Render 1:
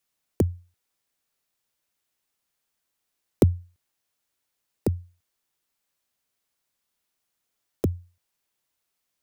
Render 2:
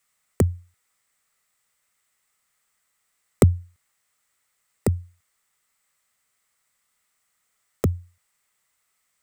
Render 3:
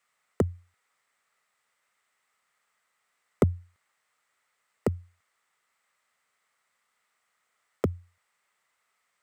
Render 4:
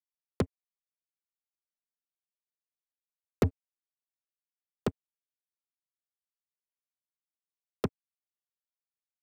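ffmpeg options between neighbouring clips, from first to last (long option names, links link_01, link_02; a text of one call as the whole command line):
ffmpeg -i in.wav -af "equalizer=frequency=315:width_type=o:width=0.33:gain=-10,equalizer=frequency=1250:width_type=o:width=0.33:gain=9,equalizer=frequency=2000:width_type=o:width=0.33:gain=10,equalizer=frequency=8000:width_type=o:width=0.33:gain=10,volume=4dB" out.wav
ffmpeg -i in.wav -filter_complex "[0:a]asplit=2[link_01][link_02];[link_02]highpass=frequency=720:poles=1,volume=19dB,asoftclip=type=tanh:threshold=-1dB[link_03];[link_01][link_03]amix=inputs=2:normalize=0,lowpass=frequency=1400:poles=1,volume=-6dB,volume=-7dB" out.wav
ffmpeg -i in.wav -af "acrusher=bits=3:mix=0:aa=0.5,volume=-4dB" out.wav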